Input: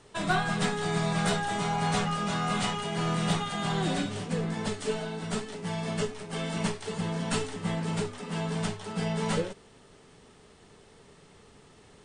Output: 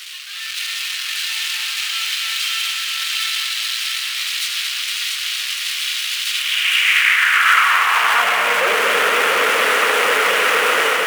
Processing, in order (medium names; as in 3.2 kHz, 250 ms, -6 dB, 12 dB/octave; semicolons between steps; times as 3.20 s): one-bit comparator; high-pass 110 Hz; high-order bell 1.7 kHz +14 dB; level rider gain up to 11.5 dB; on a send: multi-head delay 251 ms, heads first and third, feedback 68%, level -6.5 dB; on the sum: high-pass sweep 3.7 kHz -> 460 Hz, 6.84–9.43 s; speed mistake 44.1 kHz file played as 48 kHz; trim -5 dB